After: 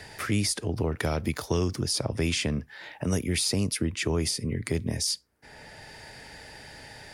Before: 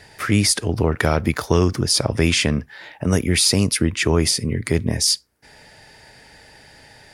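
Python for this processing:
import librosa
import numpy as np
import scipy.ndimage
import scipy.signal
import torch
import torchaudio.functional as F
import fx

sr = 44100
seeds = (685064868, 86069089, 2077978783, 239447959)

y = fx.dynamic_eq(x, sr, hz=1500.0, q=1.0, threshold_db=-34.0, ratio=4.0, max_db=-4)
y = fx.band_squash(y, sr, depth_pct=40)
y = y * librosa.db_to_amplitude(-8.5)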